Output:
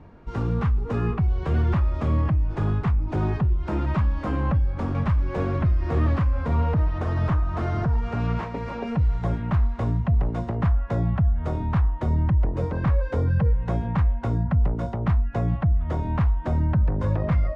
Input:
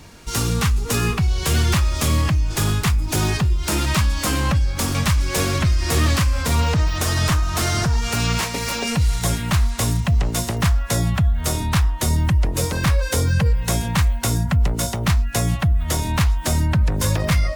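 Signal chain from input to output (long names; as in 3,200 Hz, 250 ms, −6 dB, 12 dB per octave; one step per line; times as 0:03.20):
low-pass filter 1,100 Hz 12 dB per octave
level −3 dB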